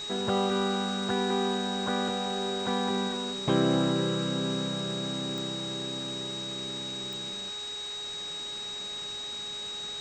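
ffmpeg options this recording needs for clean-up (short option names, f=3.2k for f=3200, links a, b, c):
-af "adeclick=t=4,bandreject=f=414.7:t=h:w=4,bandreject=f=829.4:t=h:w=4,bandreject=f=1.2441k:t=h:w=4,bandreject=f=1.6588k:t=h:w=4,bandreject=f=3.8k:w=30,afftdn=nr=30:nf=-37"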